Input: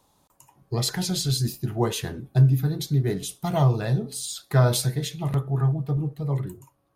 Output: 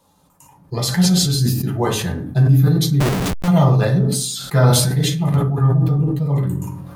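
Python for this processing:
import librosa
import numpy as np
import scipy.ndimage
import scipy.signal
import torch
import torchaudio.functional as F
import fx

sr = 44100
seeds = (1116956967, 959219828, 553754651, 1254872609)

y = fx.rev_fdn(x, sr, rt60_s=0.49, lf_ratio=1.3, hf_ratio=0.55, size_ms=34.0, drr_db=-1.5)
y = fx.schmitt(y, sr, flips_db=-27.0, at=(3.0, 3.48))
y = fx.sustainer(y, sr, db_per_s=38.0)
y = F.gain(torch.from_numpy(y), 2.0).numpy()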